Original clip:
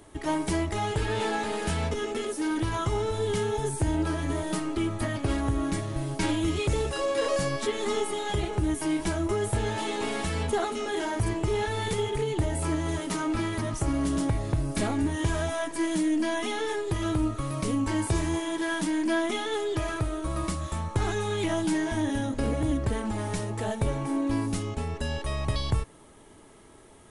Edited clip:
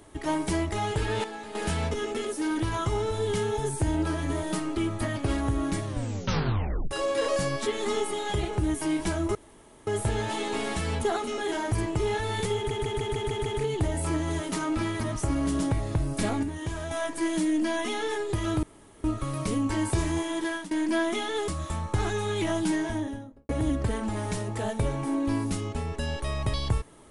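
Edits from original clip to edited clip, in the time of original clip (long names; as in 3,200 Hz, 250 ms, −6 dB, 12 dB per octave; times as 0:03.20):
0:01.24–0:01.55: clip gain −10 dB
0:05.86: tape stop 1.05 s
0:09.35: splice in room tone 0.52 s
0:12.04: stutter 0.15 s, 7 plays
0:15.01–0:15.49: clip gain −6 dB
0:17.21: splice in room tone 0.41 s
0:18.63–0:18.88: fade out, to −20 dB
0:19.65–0:20.50: remove
0:21.75–0:22.51: fade out and dull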